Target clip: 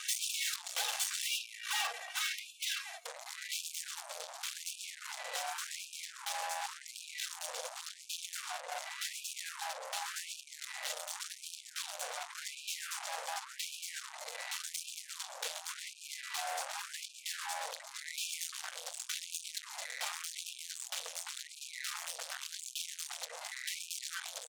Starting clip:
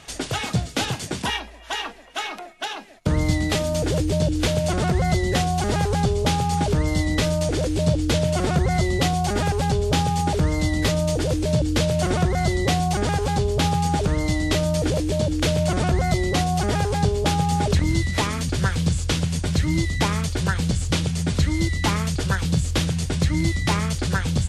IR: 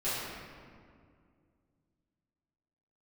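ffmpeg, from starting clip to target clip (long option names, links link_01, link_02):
-af "lowshelf=frequency=410:gain=6.5,bandreject=frequency=4800:width=14,aecho=1:1:2.6:0.87,bandreject=frequency=62.16:width_type=h:width=4,bandreject=frequency=124.32:width_type=h:width=4,bandreject=frequency=186.48:width_type=h:width=4,acompressor=threshold=-22dB:ratio=16,aeval=exprs='(tanh(63.1*val(0)+0.5)-tanh(0.5))/63.1':channel_layout=same,highshelf=frequency=2300:gain=9.5,afftfilt=real='re*gte(b*sr/1024,460*pow(2400/460,0.5+0.5*sin(2*PI*0.89*pts/sr)))':imag='im*gte(b*sr/1024,460*pow(2400/460,0.5+0.5*sin(2*PI*0.89*pts/sr)))':win_size=1024:overlap=0.75"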